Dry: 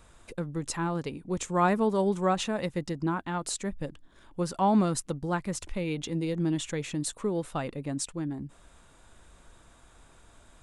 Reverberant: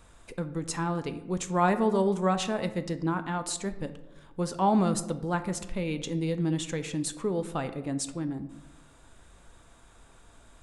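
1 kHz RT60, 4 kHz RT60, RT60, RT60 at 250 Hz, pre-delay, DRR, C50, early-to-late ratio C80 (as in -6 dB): 0.90 s, 0.55 s, 1.0 s, 1.3 s, 4 ms, 9.5 dB, 13.0 dB, 15.0 dB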